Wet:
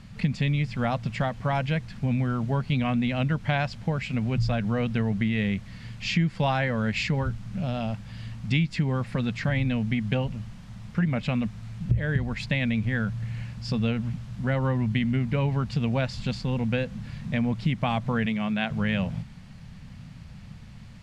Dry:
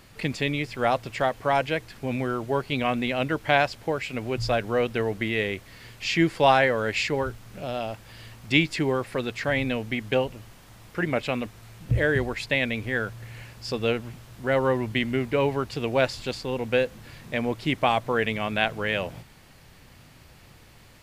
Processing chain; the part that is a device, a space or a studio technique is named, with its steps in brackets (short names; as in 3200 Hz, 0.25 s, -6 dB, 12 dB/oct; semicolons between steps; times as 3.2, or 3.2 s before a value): jukebox (LPF 6900 Hz 12 dB/oct; resonant low shelf 260 Hz +9 dB, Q 3; compressor 4:1, threshold -20 dBFS, peak gain reduction 11 dB); 18.26–18.71 HPF 190 Hz 12 dB/oct; gain -1.5 dB